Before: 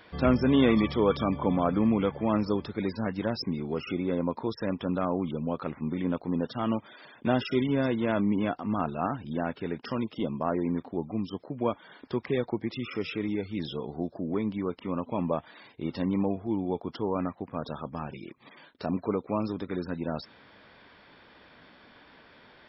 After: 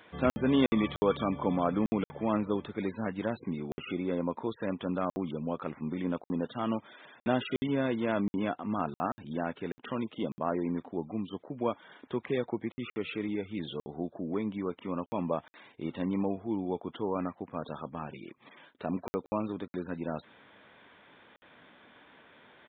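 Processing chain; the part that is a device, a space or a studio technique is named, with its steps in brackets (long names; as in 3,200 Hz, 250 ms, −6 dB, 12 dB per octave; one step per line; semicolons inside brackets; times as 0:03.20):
call with lost packets (high-pass filter 140 Hz 6 dB per octave; downsampling to 8,000 Hz; dropped packets of 60 ms random)
level −2 dB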